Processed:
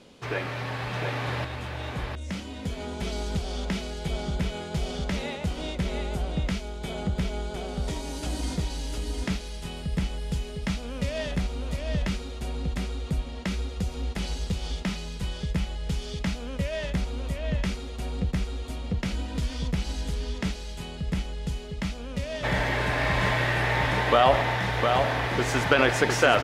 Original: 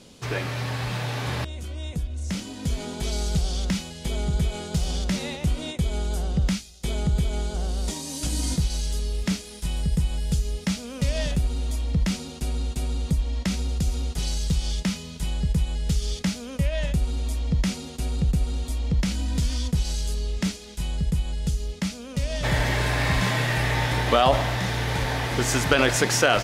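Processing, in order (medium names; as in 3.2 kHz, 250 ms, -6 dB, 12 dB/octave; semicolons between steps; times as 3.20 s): tone controls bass -6 dB, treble -11 dB; delay 707 ms -4.5 dB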